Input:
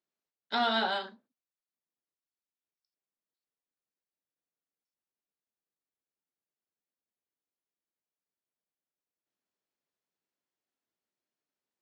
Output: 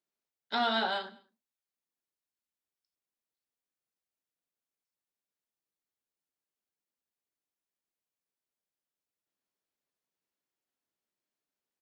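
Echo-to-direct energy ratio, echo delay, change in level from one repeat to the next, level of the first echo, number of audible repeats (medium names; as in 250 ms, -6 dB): -21.0 dB, 101 ms, -5.0 dB, -22.0 dB, 2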